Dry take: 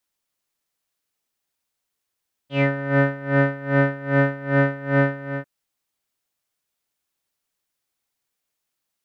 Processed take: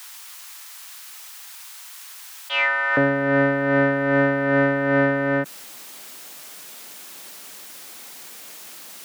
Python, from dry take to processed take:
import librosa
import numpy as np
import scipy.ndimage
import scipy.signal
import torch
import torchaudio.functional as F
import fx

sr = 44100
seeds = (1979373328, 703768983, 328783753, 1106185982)

y = fx.highpass(x, sr, hz=fx.steps((0.0, 880.0), (2.97, 170.0)), slope=24)
y = fx.env_flatten(y, sr, amount_pct=70)